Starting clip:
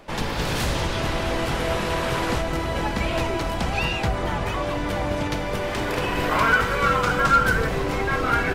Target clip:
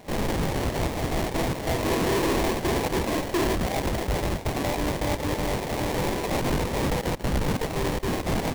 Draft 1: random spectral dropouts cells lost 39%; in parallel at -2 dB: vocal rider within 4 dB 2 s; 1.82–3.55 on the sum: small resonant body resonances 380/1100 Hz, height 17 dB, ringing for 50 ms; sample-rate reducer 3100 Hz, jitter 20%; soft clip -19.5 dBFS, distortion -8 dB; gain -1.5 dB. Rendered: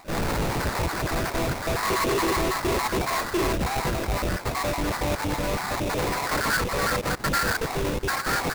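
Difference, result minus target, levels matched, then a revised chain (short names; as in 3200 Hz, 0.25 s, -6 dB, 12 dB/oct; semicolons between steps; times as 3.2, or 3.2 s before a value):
sample-rate reducer: distortion -5 dB
random spectral dropouts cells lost 39%; in parallel at -2 dB: vocal rider within 4 dB 2 s; 1.82–3.55 on the sum: small resonant body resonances 380/1100 Hz, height 17 dB, ringing for 50 ms; sample-rate reducer 1400 Hz, jitter 20%; soft clip -19.5 dBFS, distortion -8 dB; gain -1.5 dB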